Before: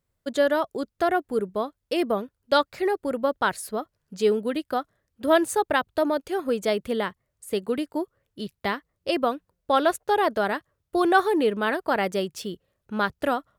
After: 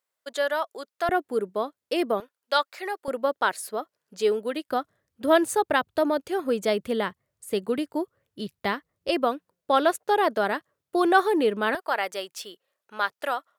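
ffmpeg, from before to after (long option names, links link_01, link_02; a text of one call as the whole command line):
ffmpeg -i in.wav -af "asetnsamples=nb_out_samples=441:pad=0,asendcmd='1.09 highpass f 250;2.2 highpass f 730;3.08 highpass f 340;4.69 highpass f 85;9.09 highpass f 190;11.75 highpass f 680',highpass=690" out.wav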